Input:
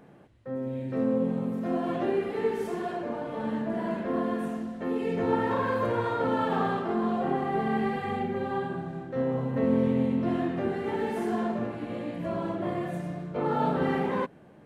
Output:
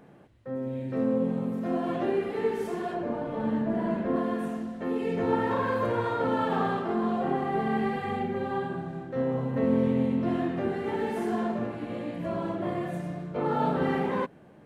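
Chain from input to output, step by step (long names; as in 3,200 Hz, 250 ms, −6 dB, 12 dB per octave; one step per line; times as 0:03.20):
0:02.94–0:04.16: spectral tilt −1.5 dB per octave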